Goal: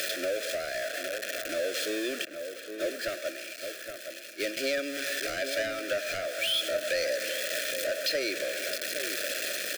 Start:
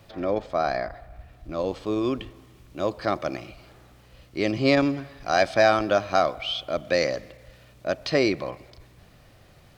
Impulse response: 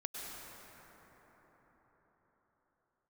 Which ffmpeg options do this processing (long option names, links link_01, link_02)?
-filter_complex "[0:a]aeval=exprs='val(0)+0.5*0.0631*sgn(val(0))':channel_layout=same,highpass=frequency=400:width=0.5412,highpass=frequency=400:width=1.3066,asettb=1/sr,asplit=3[link_01][link_02][link_03];[link_01]atrim=end=2.254[link_04];[link_02]atrim=start=2.25:end=4.57,asetpts=PTS-STARTPTS,afade=type=in:duration=0.004:curve=qsin,afade=type=out:start_time=2.316:duration=0.004:curve=qsin,agate=range=-33dB:threshold=-21dB:ratio=3:detection=peak[link_05];[link_03]atrim=start=4.566[link_06];[link_04][link_05]acrossfade=duration=0.004:curve1=hsin:curve2=qsin[link_07];[link_07][link_06]acrossfade=duration=0.004:curve1=qsin:curve2=hsin,aecho=1:1:1.2:0.48,acompressor=threshold=-35dB:ratio=2.5,volume=27.5dB,asoftclip=hard,volume=-27.5dB,asuperstop=centerf=910:order=8:qfactor=1.3,asplit=2[link_08][link_09];[link_09]adelay=816.3,volume=-7dB,highshelf=frequency=4000:gain=-18.4[link_10];[link_08][link_10]amix=inputs=2:normalize=0,volume=5dB"